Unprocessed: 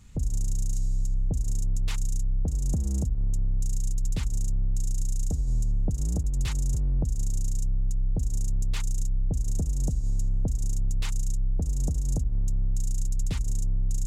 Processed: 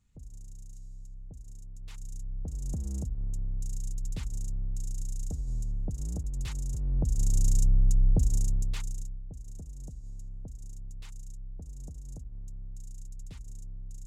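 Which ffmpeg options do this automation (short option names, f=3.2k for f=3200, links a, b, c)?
-af "volume=4dB,afade=t=in:st=1.74:d=1.06:silence=0.251189,afade=t=in:st=6.77:d=0.72:silence=0.281838,afade=t=out:st=8.09:d=0.66:silence=0.354813,afade=t=out:st=8.75:d=0.47:silence=0.281838"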